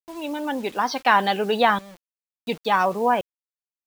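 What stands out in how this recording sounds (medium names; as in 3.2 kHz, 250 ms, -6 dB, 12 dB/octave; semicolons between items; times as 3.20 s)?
tremolo saw up 0.56 Hz, depth 90%; a quantiser's noise floor 8-bit, dither none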